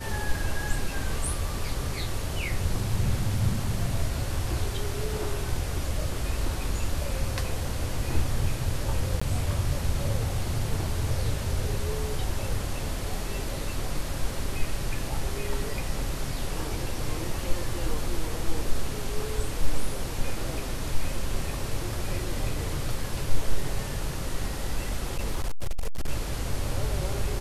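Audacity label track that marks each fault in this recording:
9.200000	9.210000	gap 15 ms
25.040000	26.090000	clipped -22 dBFS

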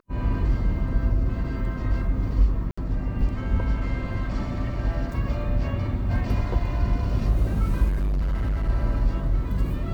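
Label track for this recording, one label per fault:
2.710000	2.770000	gap 65 ms
7.880000	8.700000	clipped -21 dBFS

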